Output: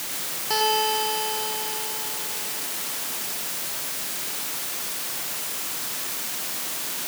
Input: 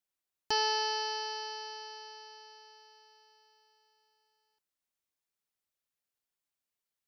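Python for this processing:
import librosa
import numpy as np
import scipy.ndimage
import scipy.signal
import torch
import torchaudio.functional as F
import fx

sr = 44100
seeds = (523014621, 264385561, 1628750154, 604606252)

p1 = fx.quant_dither(x, sr, seeds[0], bits=6, dither='triangular')
p2 = scipy.signal.sosfilt(scipy.signal.butter(4, 130.0, 'highpass', fs=sr, output='sos'), p1)
p3 = p2 + fx.echo_single(p2, sr, ms=104, db=-3.5, dry=0)
y = F.gain(torch.from_numpy(p3), 5.0).numpy()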